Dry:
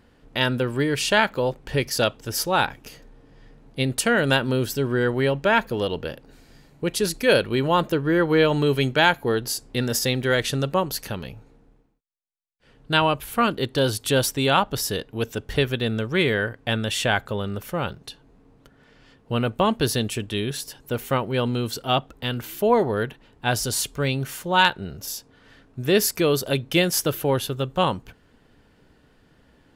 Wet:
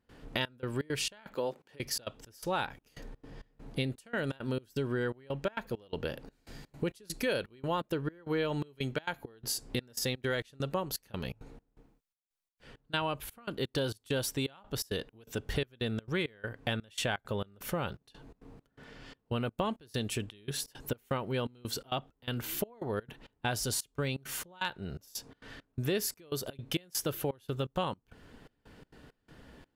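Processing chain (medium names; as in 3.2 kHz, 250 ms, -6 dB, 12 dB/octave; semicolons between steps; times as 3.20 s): 1.35–1.80 s: high-pass 220 Hz 12 dB/octave; compression 4:1, threshold -35 dBFS, peak gain reduction 19 dB; trance gate ".xxxx..xx.xx." 167 bpm -24 dB; trim +3 dB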